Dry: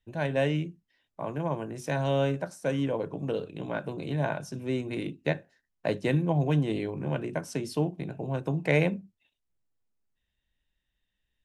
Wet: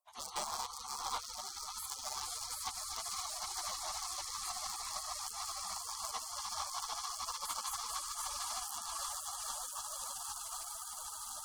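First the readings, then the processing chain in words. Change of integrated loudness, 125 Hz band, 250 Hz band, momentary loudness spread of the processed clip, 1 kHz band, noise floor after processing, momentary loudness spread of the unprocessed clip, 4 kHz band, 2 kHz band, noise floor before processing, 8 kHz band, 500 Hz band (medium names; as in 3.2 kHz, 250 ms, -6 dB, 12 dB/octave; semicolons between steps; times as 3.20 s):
-9.0 dB, under -35 dB, -37.0 dB, 3 LU, -2.0 dB, -47 dBFS, 9 LU, +4.0 dB, -14.5 dB, -82 dBFS, +14.5 dB, -25.5 dB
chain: backward echo that repeats 257 ms, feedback 85%, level -5 dB; frequency weighting D; level rider gain up to 3 dB; hum notches 60/120/180/240/300/360/420/480 Hz; echo with a slow build-up 152 ms, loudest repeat 8, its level -9 dB; compression 20:1, threshold -22 dBFS, peak gain reduction 11 dB; hard clipper -22 dBFS, distortion -15 dB; spectral gate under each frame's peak -30 dB weak; high-order bell 790 Hz +14.5 dB 1.3 oct; trim +5.5 dB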